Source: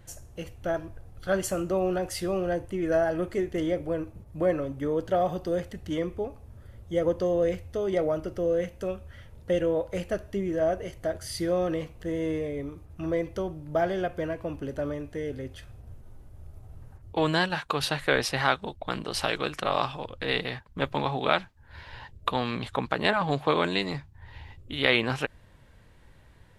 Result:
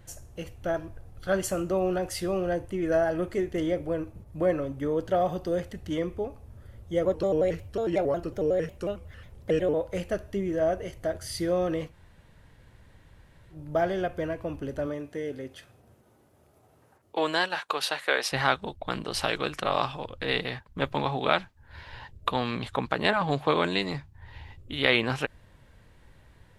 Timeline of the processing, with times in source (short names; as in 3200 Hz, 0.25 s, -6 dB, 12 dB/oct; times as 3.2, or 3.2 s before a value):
7.05–9.74 shaped vibrato square 5.5 Hz, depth 160 cents
11.9–13.55 room tone, crossfade 0.10 s
14.86–18.31 HPF 140 Hz -> 540 Hz